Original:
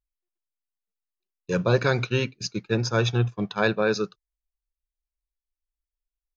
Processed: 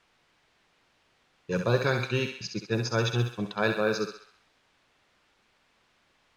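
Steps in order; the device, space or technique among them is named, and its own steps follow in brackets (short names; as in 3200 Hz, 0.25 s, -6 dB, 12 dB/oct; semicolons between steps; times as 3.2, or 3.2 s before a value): thinning echo 66 ms, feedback 58%, high-pass 630 Hz, level -5.5 dB; cassette deck with a dynamic noise filter (white noise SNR 28 dB; low-pass opened by the level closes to 2900 Hz, open at -18 dBFS); gain -4 dB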